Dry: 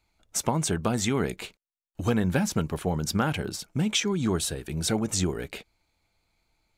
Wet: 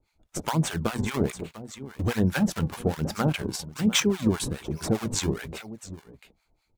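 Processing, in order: notches 60/120/180/240 Hz; echo 0.696 s -15.5 dB; in parallel at -5 dB: decimation with a swept rate 39×, swing 160% 1.2 Hz; on the sum: harmonic tremolo 4.9 Hz, depth 100%, crossover 810 Hz; gain +2.5 dB

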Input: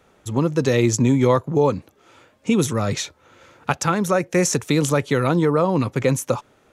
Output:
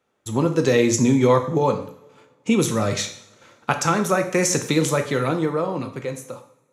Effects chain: ending faded out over 2.12 s; HPF 140 Hz 6 dB/oct; gate -49 dBFS, range -15 dB; on a send: reverb, pre-delay 3 ms, DRR 5 dB

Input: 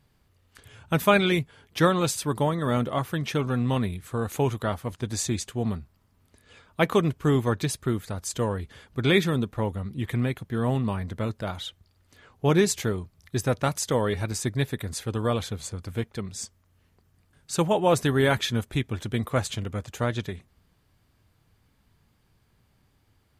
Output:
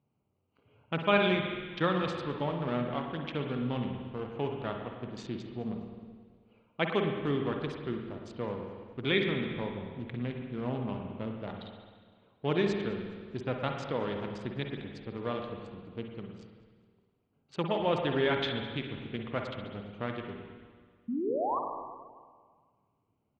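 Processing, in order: Wiener smoothing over 25 samples; HPF 150 Hz 12 dB/oct; painted sound rise, 21.08–21.59, 220–1200 Hz -24 dBFS; ladder low-pass 3900 Hz, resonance 40%; on a send: frequency-shifting echo 0.207 s, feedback 45%, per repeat -90 Hz, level -23.5 dB; on the sum: spring tank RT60 1.7 s, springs 49/54 ms, chirp 20 ms, DRR 2.5 dB

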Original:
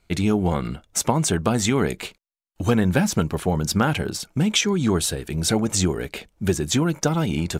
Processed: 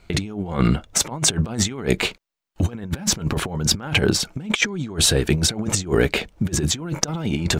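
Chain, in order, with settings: bell 12000 Hz -9 dB 1.3 oct; negative-ratio compressor -27 dBFS, ratio -0.5; gain +6 dB

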